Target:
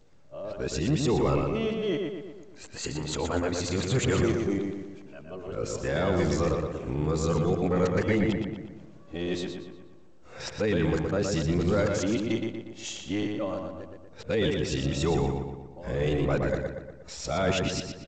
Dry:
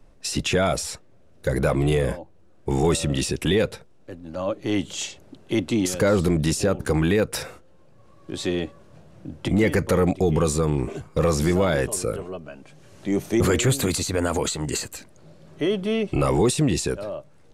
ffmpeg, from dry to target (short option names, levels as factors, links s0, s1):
-filter_complex "[0:a]areverse,atempo=0.97,asplit=2[s0][s1];[s1]adelay=119,lowpass=f=3500:p=1,volume=0.668,asplit=2[s2][s3];[s3]adelay=119,lowpass=f=3500:p=1,volume=0.53,asplit=2[s4][s5];[s5]adelay=119,lowpass=f=3500:p=1,volume=0.53,asplit=2[s6][s7];[s7]adelay=119,lowpass=f=3500:p=1,volume=0.53,asplit=2[s8][s9];[s9]adelay=119,lowpass=f=3500:p=1,volume=0.53,asplit=2[s10][s11];[s11]adelay=119,lowpass=f=3500:p=1,volume=0.53,asplit=2[s12][s13];[s13]adelay=119,lowpass=f=3500:p=1,volume=0.53[s14];[s0][s2][s4][s6][s8][s10][s12][s14]amix=inputs=8:normalize=0,volume=0.473" -ar 16000 -c:a g722